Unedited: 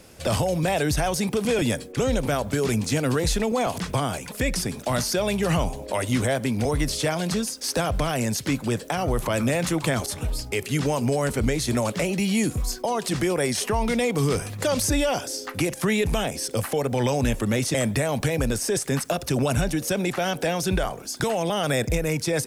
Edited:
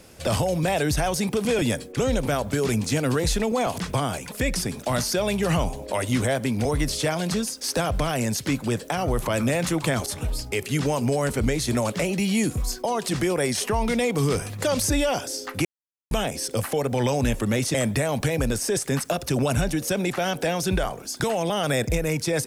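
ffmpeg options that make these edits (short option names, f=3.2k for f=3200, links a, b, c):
-filter_complex "[0:a]asplit=3[a][b][c];[a]atrim=end=15.65,asetpts=PTS-STARTPTS,afade=t=out:st=15.646:d=0.004:c=hsin[d];[b]atrim=start=15.65:end=16.11,asetpts=PTS-STARTPTS,volume=0[e];[c]atrim=start=16.11,asetpts=PTS-STARTPTS,afade=t=in:d=0.004:c=hsin[f];[d][e][f]concat=n=3:v=0:a=1"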